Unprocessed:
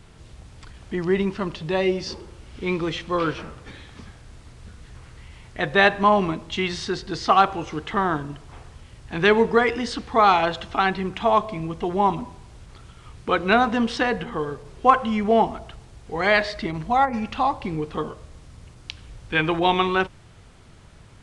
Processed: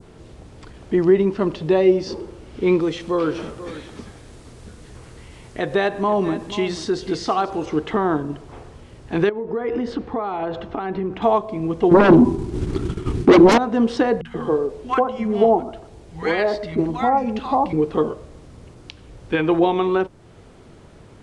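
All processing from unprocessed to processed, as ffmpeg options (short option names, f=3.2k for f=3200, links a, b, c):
-filter_complex "[0:a]asettb=1/sr,asplit=3[a][b][c];[a]atrim=end=2.804[d];[b]atrim=start=2.8:end=7.66,asetpts=PTS-STARTPTS,afade=t=in:d=0.004:c=qsin,afade=t=out:st=4.856:d=0.004:c=qsin,aemphasis=mode=production:type=cd,acompressor=threshold=-32dB:ratio=1.5:attack=3.2:release=140:knee=1:detection=peak,aecho=1:1:487:0.188,atrim=end_sample=214326[e];[c]atrim=start=7.656[f];[d][e]acrossfade=d=0.004:c1=hsin:c2=qsin[g];[g][f]acrossfade=d=0.004:c1=qsin:c2=hsin,asettb=1/sr,asplit=3[h][i][j];[h]atrim=end=9.294[k];[i]atrim=start=9.29:end=11.22,asetpts=PTS-STARTPTS,afade=t=in:d=0.004:c=qsin,afade=t=out:st=1.926:d=0.004:c=qsin,lowpass=f=1.5k:p=1,acompressor=threshold=-27dB:ratio=8:attack=3.2:release=140:knee=1:detection=peak[l];[j]atrim=start=11.216[m];[k][l]acrossfade=d=0.004:c1=hsin:c2=qsin[n];[n][m]acrossfade=d=0.004:c1=qsin:c2=hsin,asettb=1/sr,asplit=3[o][p][q];[o]atrim=end=11.914[r];[p]atrim=start=11.91:end=13.58,asetpts=PTS-STARTPTS,afade=t=in:d=0.004:c=qsin,afade=t=out:st=1.666:d=0.004:c=qsin,agate=range=-33dB:threshold=-39dB:ratio=3:release=100:detection=peak,lowshelf=f=440:t=q:w=3:g=6.5,aeval=exprs='0.668*sin(PI/2*4.47*val(0)/0.668)':c=same[s];[q]atrim=start=13.576[t];[r][s]acrossfade=d=0.004:c1=hsin:c2=qsin[u];[u][t]acrossfade=d=0.004:c1=qsin:c2=hsin,asettb=1/sr,asplit=3[v][w][x];[v]atrim=end=14.214[y];[w]atrim=start=14.21:end=17.73,asetpts=PTS-STARTPTS,afade=t=in:d=0.004:c=qsin,afade=t=out:st=3.516:d=0.004:c=qsin,asplit=2[z][aa];[aa]adelay=12,volume=-14dB[ab];[z][ab]amix=inputs=2:normalize=0,atrim=end_sample=155232,acrossover=split=170|1200[ac][ad][ae];[ae]adelay=40[af];[ad]adelay=130[ag];[ac][ag][af]amix=inputs=3:normalize=0,atrim=end_sample=155232[ah];[x]atrim=start=17.726[ai];[y][ah]acrossfade=d=0.004:c1=hsin:c2=qsin[aj];[aj][ai]acrossfade=d=0.004:c1=qsin:c2=hsin,adynamicequalizer=threshold=0.0141:dfrequency=2600:dqfactor=0.89:tfrequency=2600:tqfactor=0.89:attack=5:release=100:ratio=0.375:range=2.5:mode=cutabove:tftype=bell,alimiter=limit=-14dB:level=0:latency=1:release=395,equalizer=f=380:t=o:w=2.2:g=11.5,volume=-1dB"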